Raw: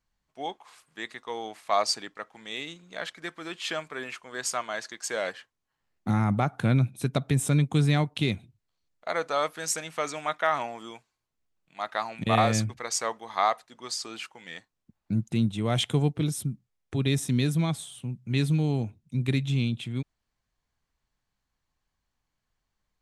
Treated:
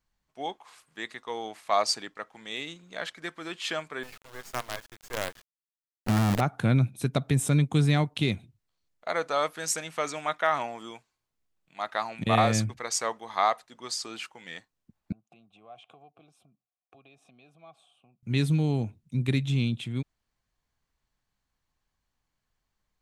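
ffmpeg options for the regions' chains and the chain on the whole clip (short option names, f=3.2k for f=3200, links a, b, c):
-filter_complex "[0:a]asettb=1/sr,asplit=3[a][b][c];[a]atrim=end=4.034[d];[b]atrim=start=4.03:end=6.41,asetpts=PTS-STARTPTS,afade=t=in:d=0.004:c=qsin,afade=t=out:st=2.376:d=0.004:c=qsin,lowpass=f=1.2k:p=1,acrusher=bits=5:dc=4:mix=0:aa=0.000001[e];[c]atrim=start=6.406[f];[d][e]acrossfade=d=0.004:c1=hsin:c2=qsin[g];[g][f]acrossfade=d=0.004:c1=qsin:c2=hsin,asettb=1/sr,asplit=3[h][i][j];[h]atrim=end=15.124[k];[i]atrim=start=15.12:end=18.23,asetpts=PTS-STARTPTS,afade=t=in:d=0.004:c=qsin,afade=t=out:st=3.106:d=0.004:c=qsin,acompressor=threshold=-32dB:ratio=6:attack=3.2:release=140:knee=1:detection=peak,asplit=3[l][m][n];[l]bandpass=f=730:t=q:w=8,volume=0dB[o];[m]bandpass=f=1.09k:t=q:w=8,volume=-6dB[p];[n]bandpass=f=2.44k:t=q:w=8,volume=-9dB[q];[o][p][q]amix=inputs=3:normalize=0[r];[j]atrim=start=18.226[s];[k][r]acrossfade=d=0.004:c1=hsin:c2=qsin[t];[t][s]acrossfade=d=0.004:c1=qsin:c2=hsin"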